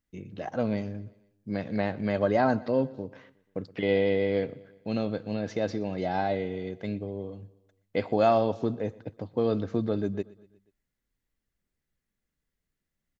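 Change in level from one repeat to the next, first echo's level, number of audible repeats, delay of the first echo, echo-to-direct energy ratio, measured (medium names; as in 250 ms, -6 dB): -5.0 dB, -22.0 dB, 3, 121 ms, -20.5 dB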